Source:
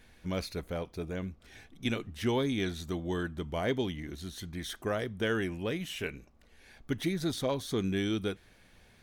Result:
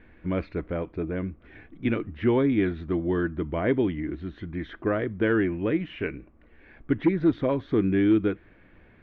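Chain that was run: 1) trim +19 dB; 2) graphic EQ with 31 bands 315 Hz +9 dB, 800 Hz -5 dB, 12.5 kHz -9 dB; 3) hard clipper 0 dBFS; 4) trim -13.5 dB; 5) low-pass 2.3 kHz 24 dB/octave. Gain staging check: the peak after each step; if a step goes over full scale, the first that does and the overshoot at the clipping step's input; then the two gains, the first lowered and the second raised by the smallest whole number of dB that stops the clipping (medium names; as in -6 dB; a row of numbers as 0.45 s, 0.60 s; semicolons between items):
+2.0 dBFS, +4.5 dBFS, 0.0 dBFS, -13.5 dBFS, -12.5 dBFS; step 1, 4.5 dB; step 1 +14 dB, step 4 -8.5 dB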